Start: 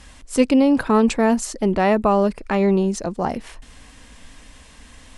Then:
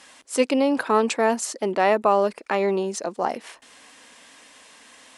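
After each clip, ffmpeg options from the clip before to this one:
ffmpeg -i in.wav -af "highpass=390" out.wav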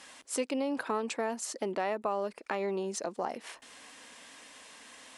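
ffmpeg -i in.wav -af "acompressor=threshold=-31dB:ratio=2.5,volume=-2.5dB" out.wav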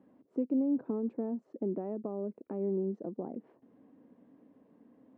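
ffmpeg -i in.wav -af "asuperpass=centerf=200:order=4:qfactor=0.84,volume=5.5dB" out.wav

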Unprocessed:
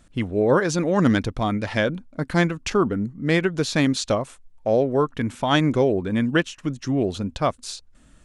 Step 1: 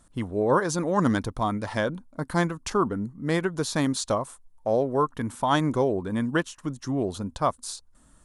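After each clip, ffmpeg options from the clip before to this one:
ffmpeg -i in.wav -af "equalizer=frequency=1000:width_type=o:width=0.67:gain=8,equalizer=frequency=2500:width_type=o:width=0.67:gain=-7,equalizer=frequency=10000:width_type=o:width=0.67:gain=11,volume=-5dB" out.wav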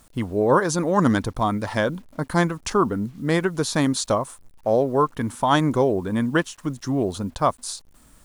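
ffmpeg -i in.wav -af "acrusher=bits=9:mix=0:aa=0.000001,volume=4dB" out.wav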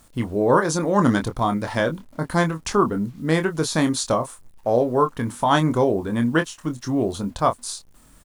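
ffmpeg -i in.wav -filter_complex "[0:a]asplit=2[link_01][link_02];[link_02]adelay=25,volume=-7.5dB[link_03];[link_01][link_03]amix=inputs=2:normalize=0" out.wav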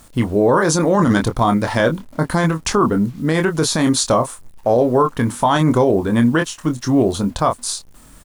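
ffmpeg -i in.wav -af "alimiter=limit=-13.5dB:level=0:latency=1:release=19,volume=7.5dB" out.wav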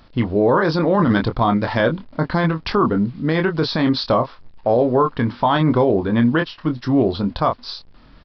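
ffmpeg -i in.wav -af "aresample=11025,aresample=44100,volume=-1.5dB" out.wav

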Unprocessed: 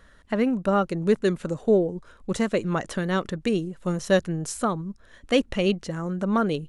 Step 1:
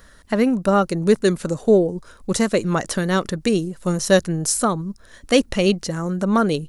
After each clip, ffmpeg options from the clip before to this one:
ffmpeg -i in.wav -af "aexciter=amount=2.7:drive=4.1:freq=4300,volume=5dB" out.wav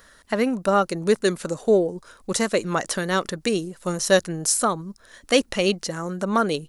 ffmpeg -i in.wav -af "lowshelf=frequency=250:gain=-11" out.wav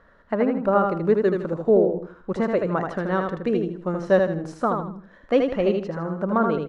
ffmpeg -i in.wav -filter_complex "[0:a]lowpass=1300,asplit=2[link_01][link_02];[link_02]aecho=0:1:79|158|237|316:0.596|0.191|0.061|0.0195[link_03];[link_01][link_03]amix=inputs=2:normalize=0" out.wav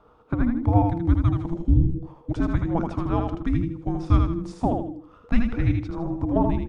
ffmpeg -i in.wav -af "afreqshift=-500" -ar 44100 -c:a aac -b:a 96k out.aac

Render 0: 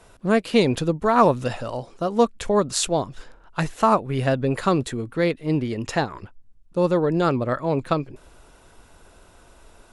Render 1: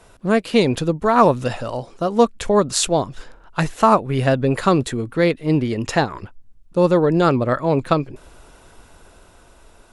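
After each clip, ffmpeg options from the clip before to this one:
ffmpeg -i in.wav -af "dynaudnorm=framelen=250:gausssize=9:maxgain=3dB,volume=2dB" out.wav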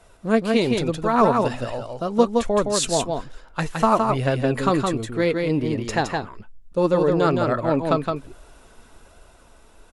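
ffmpeg -i in.wav -af "flanger=delay=1.4:depth=3.3:regen=60:speed=1.2:shape=sinusoidal,aecho=1:1:166:0.631" out.wav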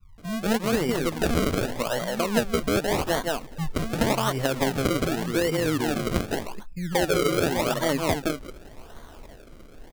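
ffmpeg -i in.wav -filter_complex "[0:a]acrossover=split=160[link_01][link_02];[link_02]adelay=180[link_03];[link_01][link_03]amix=inputs=2:normalize=0,acrusher=samples=34:mix=1:aa=0.000001:lfo=1:lforange=34:lforate=0.86,acompressor=threshold=-28dB:ratio=3,volume=5dB" out.wav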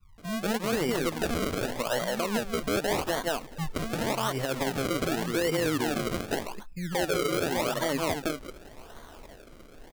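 ffmpeg -i in.wav -af "lowshelf=frequency=230:gain=-5.5,alimiter=limit=-17.5dB:level=0:latency=1:release=88" out.wav

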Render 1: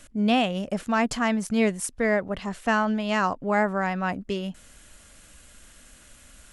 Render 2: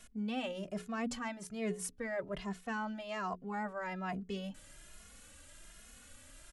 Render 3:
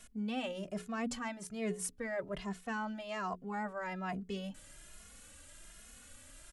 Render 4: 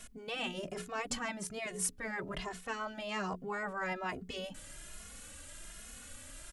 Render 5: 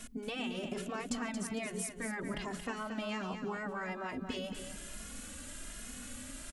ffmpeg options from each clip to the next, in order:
ffmpeg -i in.wav -filter_complex "[0:a]bandreject=frequency=60:width_type=h:width=6,bandreject=frequency=120:width_type=h:width=6,bandreject=frequency=180:width_type=h:width=6,bandreject=frequency=240:width_type=h:width=6,bandreject=frequency=300:width_type=h:width=6,bandreject=frequency=360:width_type=h:width=6,bandreject=frequency=420:width_type=h:width=6,areverse,acompressor=threshold=-32dB:ratio=4,areverse,asplit=2[link_01][link_02];[link_02]adelay=2.4,afreqshift=1.2[link_03];[link_01][link_03]amix=inputs=2:normalize=1,volume=-2dB" out.wav
ffmpeg -i in.wav -af "equalizer=frequency=8800:width=1.5:gain=2.5" out.wav
ffmpeg -i in.wav -af "afftfilt=real='re*lt(hypot(re,im),0.0708)':imag='im*lt(hypot(re,im),0.0708)':win_size=1024:overlap=0.75,volume=5.5dB" out.wav
ffmpeg -i in.wav -filter_complex "[0:a]acompressor=threshold=-40dB:ratio=6,equalizer=frequency=250:width=2.5:gain=10.5,asplit=2[link_01][link_02];[link_02]aecho=0:1:227|454|681|908:0.398|0.119|0.0358|0.0107[link_03];[link_01][link_03]amix=inputs=2:normalize=0,volume=2.5dB" out.wav

